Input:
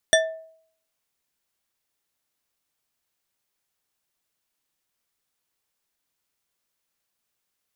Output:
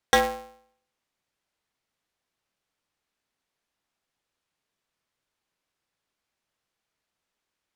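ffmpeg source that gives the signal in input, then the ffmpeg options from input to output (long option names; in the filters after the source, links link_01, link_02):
-f lavfi -i "aevalsrc='0.2*pow(10,-3*t/0.61)*sin(2*PI*645*t)+0.178*pow(10,-3*t/0.3)*sin(2*PI*1778.3*t)+0.158*pow(10,-3*t/0.187)*sin(2*PI*3485.6*t)+0.141*pow(10,-3*t/0.132)*sin(2*PI*5761.8*t)+0.126*pow(10,-3*t/0.099)*sin(2*PI*8604.3*t)':duration=0.89:sample_rate=44100"
-filter_complex "[0:a]aemphasis=mode=reproduction:type=50fm,asplit=2[link_01][link_02];[link_02]aeval=exprs='0.0944*(abs(mod(val(0)/0.0944+3,4)-2)-1)':channel_layout=same,volume=-12dB[link_03];[link_01][link_03]amix=inputs=2:normalize=0,aeval=exprs='val(0)*sgn(sin(2*PI*140*n/s))':channel_layout=same"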